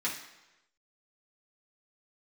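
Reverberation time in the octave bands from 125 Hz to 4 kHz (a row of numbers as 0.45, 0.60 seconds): 0.95, 0.85, 1.0, 1.0, 1.0, 0.90 seconds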